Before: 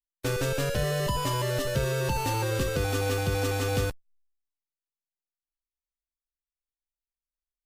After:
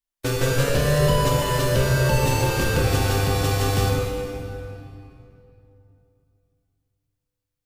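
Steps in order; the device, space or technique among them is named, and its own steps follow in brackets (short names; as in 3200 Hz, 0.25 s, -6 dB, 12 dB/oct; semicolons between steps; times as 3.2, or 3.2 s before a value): stairwell (reverb RT60 2.9 s, pre-delay 19 ms, DRR -1 dB); gain +4 dB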